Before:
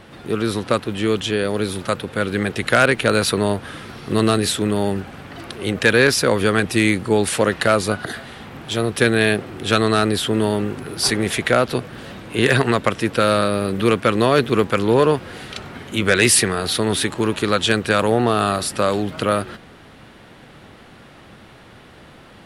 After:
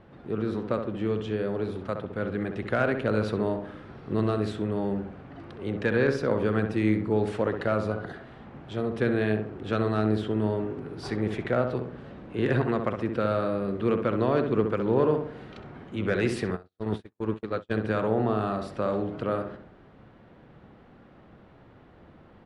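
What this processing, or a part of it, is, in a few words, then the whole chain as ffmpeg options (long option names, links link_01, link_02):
through cloth: -filter_complex "[0:a]lowpass=6600,highshelf=frequency=2200:gain=-18,asplit=2[link_01][link_02];[link_02]adelay=65,lowpass=frequency=1700:poles=1,volume=-5.5dB,asplit=2[link_03][link_04];[link_04]adelay=65,lowpass=frequency=1700:poles=1,volume=0.47,asplit=2[link_05][link_06];[link_06]adelay=65,lowpass=frequency=1700:poles=1,volume=0.47,asplit=2[link_07][link_08];[link_08]adelay=65,lowpass=frequency=1700:poles=1,volume=0.47,asplit=2[link_09][link_10];[link_10]adelay=65,lowpass=frequency=1700:poles=1,volume=0.47,asplit=2[link_11][link_12];[link_12]adelay=65,lowpass=frequency=1700:poles=1,volume=0.47[link_13];[link_01][link_03][link_05][link_07][link_09][link_11][link_13]amix=inputs=7:normalize=0,asplit=3[link_14][link_15][link_16];[link_14]afade=type=out:start_time=16.55:duration=0.02[link_17];[link_15]agate=range=-52dB:threshold=-18dB:ratio=16:detection=peak,afade=type=in:start_time=16.55:duration=0.02,afade=type=out:start_time=17.71:duration=0.02[link_18];[link_16]afade=type=in:start_time=17.71:duration=0.02[link_19];[link_17][link_18][link_19]amix=inputs=3:normalize=0,volume=-8dB"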